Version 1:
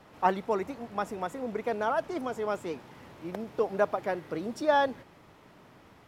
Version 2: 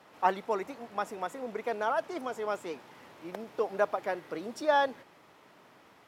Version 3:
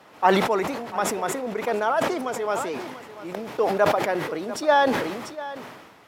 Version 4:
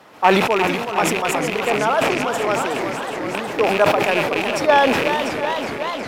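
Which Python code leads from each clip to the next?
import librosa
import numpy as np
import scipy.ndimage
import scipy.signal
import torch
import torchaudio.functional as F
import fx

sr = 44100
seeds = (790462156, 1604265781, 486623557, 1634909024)

y1 = fx.highpass(x, sr, hz=420.0, slope=6)
y2 = y1 + 10.0 ** (-15.5 / 20.0) * np.pad(y1, (int(692 * sr / 1000.0), 0))[:len(y1)]
y2 = fx.sustainer(y2, sr, db_per_s=42.0)
y2 = F.gain(torch.from_numpy(y2), 6.5).numpy()
y3 = fx.rattle_buzz(y2, sr, strikes_db=-35.0, level_db=-15.0)
y3 = fx.echo_warbled(y3, sr, ms=370, feedback_pct=79, rate_hz=2.8, cents=130, wet_db=-8.5)
y3 = F.gain(torch.from_numpy(y3), 4.0).numpy()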